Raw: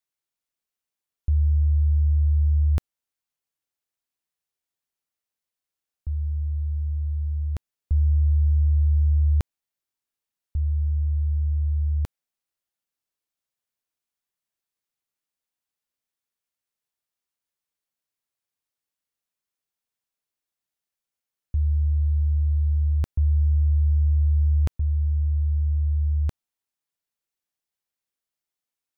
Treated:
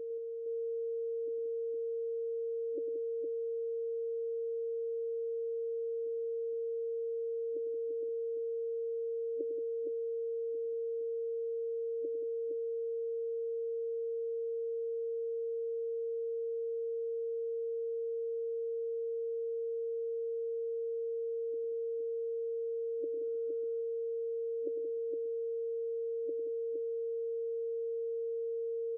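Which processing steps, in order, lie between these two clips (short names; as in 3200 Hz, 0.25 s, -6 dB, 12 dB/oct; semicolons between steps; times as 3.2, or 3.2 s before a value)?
whine 460 Hz -37 dBFS; tapped delay 0.102/0.177/0.463 s -10/-9/-5 dB; FFT band-pass 270–580 Hz; 23.23–23.81 fast leveller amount 70%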